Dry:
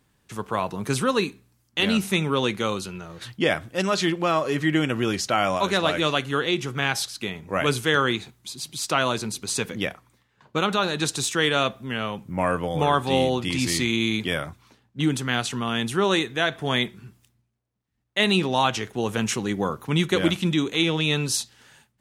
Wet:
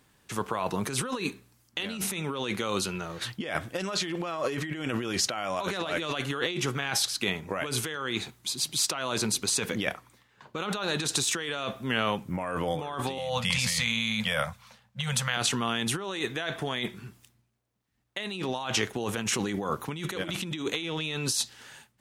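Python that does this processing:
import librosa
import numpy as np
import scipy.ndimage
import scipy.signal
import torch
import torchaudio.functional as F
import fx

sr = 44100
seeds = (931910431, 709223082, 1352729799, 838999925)

y = fx.ellip_bandstop(x, sr, low_hz=220.0, high_hz=490.0, order=3, stop_db=40, at=(13.18, 15.37))
y = fx.over_compress(y, sr, threshold_db=-29.0, ratio=-1.0)
y = fx.low_shelf(y, sr, hz=270.0, db=-6.0)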